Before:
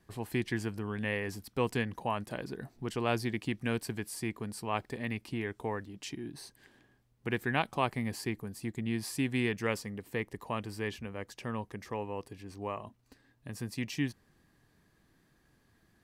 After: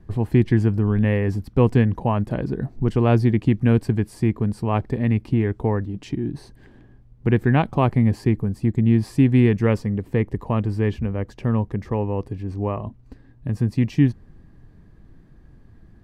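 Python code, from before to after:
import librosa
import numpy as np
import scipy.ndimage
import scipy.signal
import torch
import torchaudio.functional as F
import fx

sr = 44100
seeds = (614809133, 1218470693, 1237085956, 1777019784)

y = fx.tilt_eq(x, sr, slope=-4.0)
y = y * librosa.db_to_amplitude(7.5)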